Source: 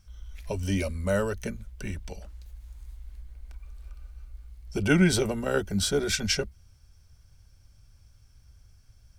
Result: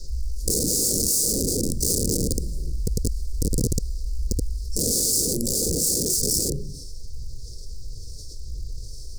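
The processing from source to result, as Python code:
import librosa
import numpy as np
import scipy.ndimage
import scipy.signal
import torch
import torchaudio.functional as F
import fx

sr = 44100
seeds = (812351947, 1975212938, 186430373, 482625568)

y = fx.halfwave_hold(x, sr, at=(0.42, 2.66))
y = fx.harmonic_tremolo(y, sr, hz=1.4, depth_pct=70, crossover_hz=870.0)
y = fx.room_shoebox(y, sr, seeds[0], volume_m3=190.0, walls='furnished', distance_m=5.3)
y = fx.rotary(y, sr, hz=0.85)
y = fx.dmg_noise_band(y, sr, seeds[1], low_hz=320.0, high_hz=5000.0, level_db=-56.0)
y = (np.mod(10.0 ** (19.0 / 20.0) * y + 1.0, 2.0) - 1.0) / 10.0 ** (19.0 / 20.0)
y = fx.quant_companded(y, sr, bits=8)
y = scipy.signal.sosfilt(scipy.signal.cheby1(4, 1.0, [490.0, 4700.0], 'bandstop', fs=sr, output='sos'), y)
y = fx.rider(y, sr, range_db=3, speed_s=2.0)
y = fx.graphic_eq(y, sr, hz=(125, 2000, 8000), db=(-3, -8, 9))
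y = fx.env_flatten(y, sr, amount_pct=50)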